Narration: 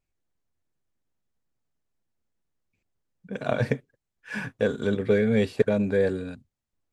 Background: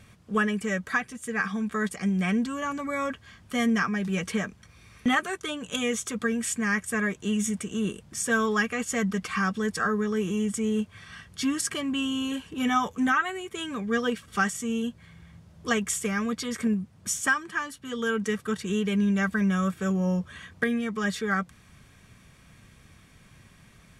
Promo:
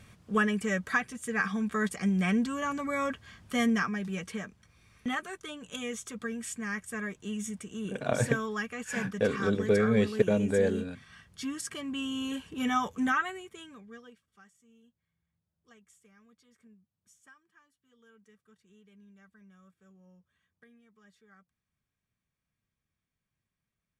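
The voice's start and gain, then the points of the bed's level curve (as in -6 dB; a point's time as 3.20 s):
4.60 s, -3.0 dB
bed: 3.61 s -1.5 dB
4.32 s -9 dB
11.65 s -9 dB
12.32 s -4 dB
13.24 s -4 dB
14.38 s -33.5 dB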